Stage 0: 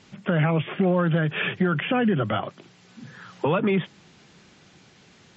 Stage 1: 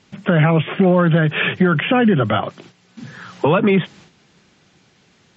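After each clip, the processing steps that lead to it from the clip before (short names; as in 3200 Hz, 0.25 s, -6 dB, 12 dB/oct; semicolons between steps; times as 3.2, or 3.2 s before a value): gate -50 dBFS, range -9 dB; gain +7.5 dB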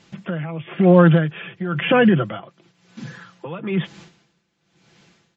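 comb 5.9 ms, depth 45%; dB-linear tremolo 1 Hz, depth 19 dB; gain +1 dB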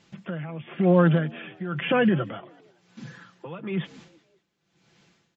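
frequency-shifting echo 0.188 s, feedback 43%, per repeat +73 Hz, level -24 dB; gain -6.5 dB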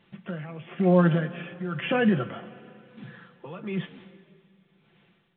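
two-slope reverb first 0.21 s, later 3 s, from -19 dB, DRR 7.5 dB; gain -2.5 dB; µ-law 64 kbps 8000 Hz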